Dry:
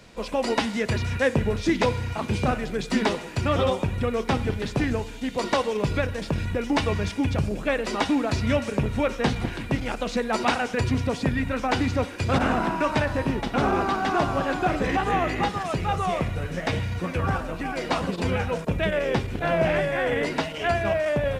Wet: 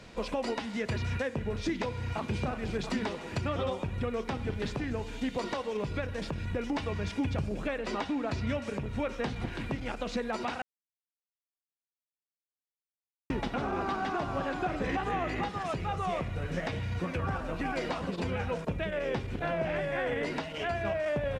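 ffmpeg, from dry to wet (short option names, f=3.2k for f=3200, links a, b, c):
-filter_complex "[0:a]asplit=2[a][b];[b]afade=t=in:st=2.01:d=0.01,afade=t=out:st=2.43:d=0.01,aecho=0:1:340|680|1020|1360|1700|2040:0.501187|0.250594|0.125297|0.0626484|0.0313242|0.0156621[c];[a][c]amix=inputs=2:normalize=0,asettb=1/sr,asplit=3[d][e][f];[d]atrim=end=7.784[g];[e]atrim=start=7.78:end=8.49,asetpts=PTS-STARTPTS,afade=t=in:d=0.004:c=qsin,afade=t=out:st=0.706:d=0.004:c=qsin,highshelf=f=8.3k:g=-8[h];[f]atrim=start=8.486[i];[g][h]acrossfade=d=0.004:c1=hsin:c2=qsin[j];[j][i]acrossfade=d=0.004:c1=qsin:c2=hsin,asplit=3[k][l][m];[k]atrim=end=10.62,asetpts=PTS-STARTPTS,afade=t=out:st=10.616:d=0.004:c=hsin[n];[l]atrim=start=10.62:end=13.3,asetpts=PTS-STARTPTS,volume=0[o];[m]atrim=start=13.3,asetpts=PTS-STARTPTS,afade=t=in:d=0.004:c=hsin[p];[n][o][p]concat=n=3:v=0:a=1,highshelf=f=9.7k:g=-11.5,acompressor=threshold=-31dB:ratio=2,alimiter=limit=-21.5dB:level=0:latency=1:release=371"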